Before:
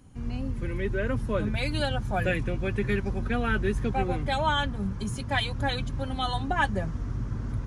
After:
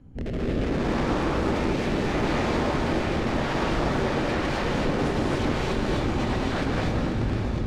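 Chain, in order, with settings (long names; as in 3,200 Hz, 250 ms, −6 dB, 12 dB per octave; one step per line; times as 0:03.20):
source passing by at 0:03.31, 5 m/s, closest 6.5 metres
tilt shelving filter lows +4 dB, about 710 Hz
notch filter 1,100 Hz, Q 11
hum removal 45.34 Hz, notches 23
in parallel at −1.5 dB: compressor whose output falls as the input rises −32 dBFS, ratio −0.5
on the sum: brickwall limiter −18.5 dBFS, peak gain reduction 6 dB
wrap-around overflow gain 24.5 dB
rotating-speaker cabinet horn 0.75 Hz, later 8 Hz, at 0:04.03
soft clipping −31 dBFS, distortion −11 dB
head-to-tape spacing loss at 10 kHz 21 dB
on a send: feedback delay with all-pass diffusion 569 ms, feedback 42%, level −7 dB
on the sum: reverb whose tail is shaped and stops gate 290 ms rising, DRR −3 dB
level +6.5 dB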